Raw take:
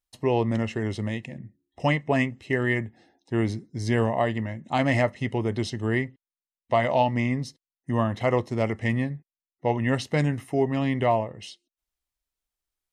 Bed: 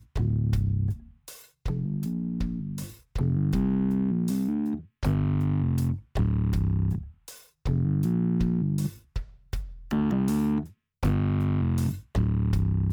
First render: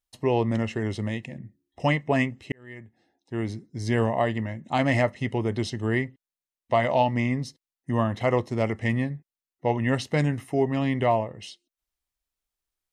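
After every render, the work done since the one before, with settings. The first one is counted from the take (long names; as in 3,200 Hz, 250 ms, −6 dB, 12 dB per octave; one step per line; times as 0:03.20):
0:02.52–0:04.04: fade in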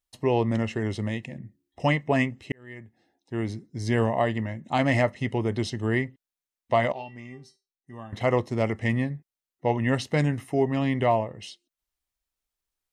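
0:06.92–0:08.13: tuned comb filter 390 Hz, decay 0.27 s, mix 90%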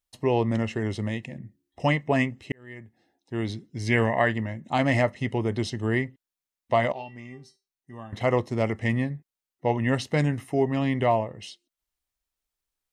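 0:03.34–0:04.33: parametric band 4,300 Hz → 1,500 Hz +13.5 dB 0.51 octaves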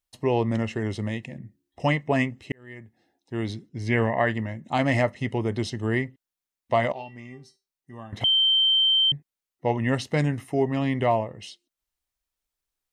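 0:03.69–0:04.28: high-shelf EQ 3,800 Hz −9.5 dB
0:08.24–0:09.12: beep over 3,120 Hz −17 dBFS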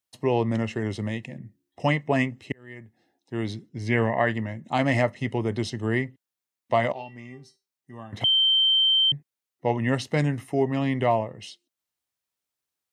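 high-pass filter 87 Hz 24 dB per octave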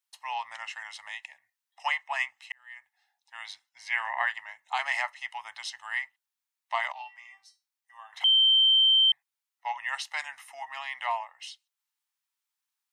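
elliptic high-pass filter 840 Hz, stop band 50 dB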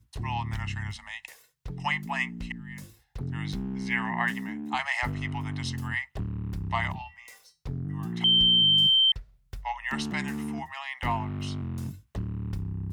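mix in bed −8.5 dB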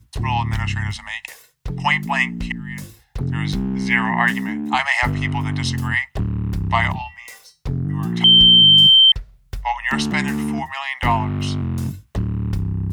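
level +10.5 dB
brickwall limiter −3 dBFS, peak gain reduction 1 dB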